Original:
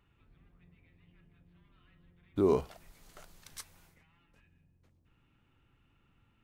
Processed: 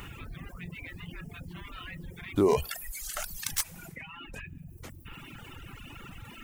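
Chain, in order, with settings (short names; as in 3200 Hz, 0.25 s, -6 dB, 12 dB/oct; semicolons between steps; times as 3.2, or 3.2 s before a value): tracing distortion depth 0.036 ms; high shelf 2300 Hz +10.5 dB; reverb removal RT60 1 s; bell 4100 Hz -5.5 dB 0.81 oct; reverb removal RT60 1.5 s; fast leveller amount 50%; gain +3 dB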